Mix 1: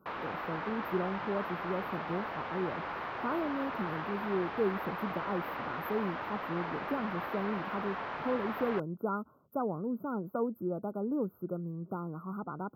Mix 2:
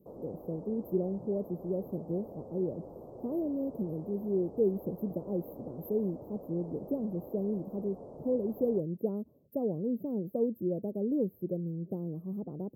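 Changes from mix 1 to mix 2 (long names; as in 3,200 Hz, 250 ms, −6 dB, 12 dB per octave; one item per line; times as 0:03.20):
speech +3.5 dB
master: add elliptic band-stop filter 540–8,400 Hz, stop band 80 dB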